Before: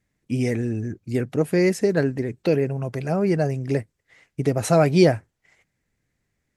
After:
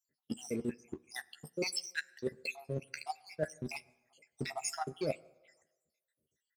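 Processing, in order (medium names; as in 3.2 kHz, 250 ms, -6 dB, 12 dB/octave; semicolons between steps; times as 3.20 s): random holes in the spectrogram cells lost 80%; high-pass 680 Hz 6 dB/octave; peaking EQ 1.4 kHz -9.5 dB 1.5 oct; waveshaping leveller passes 1; reverse; compression 12:1, threshold -38 dBFS, peak gain reduction 21.5 dB; reverse; doubling 13 ms -8 dB; on a send: reverberation RT60 1.2 s, pre-delay 7 ms, DRR 19 dB; on the sum: trim +5 dB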